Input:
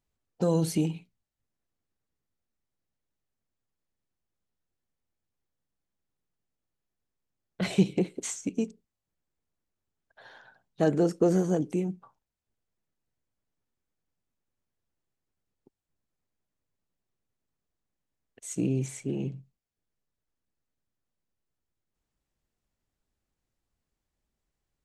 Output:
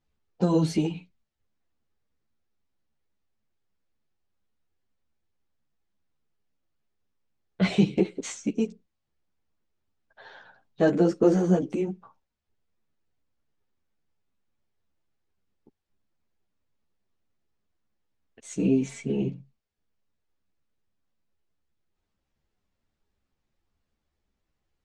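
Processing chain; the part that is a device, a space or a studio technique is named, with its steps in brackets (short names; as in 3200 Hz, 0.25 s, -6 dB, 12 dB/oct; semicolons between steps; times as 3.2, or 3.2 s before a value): string-machine ensemble chorus (ensemble effect; LPF 5100 Hz 12 dB/oct); 18.59–19.22 comb 4.4 ms, depth 57%; gain +7 dB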